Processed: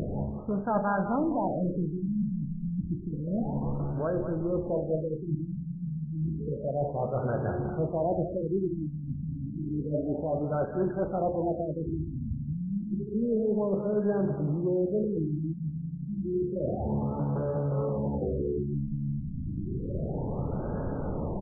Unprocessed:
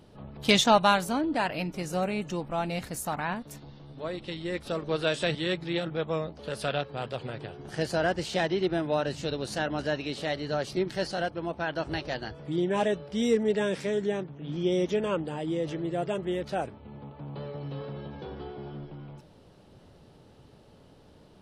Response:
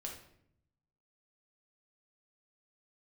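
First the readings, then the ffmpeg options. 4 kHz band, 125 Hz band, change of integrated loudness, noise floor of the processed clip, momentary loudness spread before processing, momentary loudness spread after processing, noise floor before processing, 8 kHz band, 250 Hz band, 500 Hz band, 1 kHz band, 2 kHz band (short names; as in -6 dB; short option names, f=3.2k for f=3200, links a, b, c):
under -40 dB, +6.5 dB, -1.0 dB, -37 dBFS, 14 LU, 7 LU, -55 dBFS, under -35 dB, +2.0 dB, -1.0 dB, -4.5 dB, -14.0 dB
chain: -filter_complex "[0:a]asplit=2[a][b];[b]equalizer=f=1.2k:w=1.8:g=-13[c];[1:a]atrim=start_sample=2205,afade=t=out:st=0.2:d=0.01,atrim=end_sample=9261[d];[c][d]afir=irnorm=-1:irlink=0,volume=2.5dB[e];[a][e]amix=inputs=2:normalize=0,acompressor=mode=upward:threshold=-27dB:ratio=2.5,equalizer=f=340:w=1.5:g=-2.5,areverse,acompressor=threshold=-33dB:ratio=5,areverse,asoftclip=type=tanh:threshold=-25.5dB,aecho=1:1:200|400|600|800:0.335|0.107|0.0343|0.011,afftfilt=real='re*lt(b*sr/1024,260*pow(1700/260,0.5+0.5*sin(2*PI*0.3*pts/sr)))':imag='im*lt(b*sr/1024,260*pow(1700/260,0.5+0.5*sin(2*PI*0.3*pts/sr)))':win_size=1024:overlap=0.75,volume=8dB"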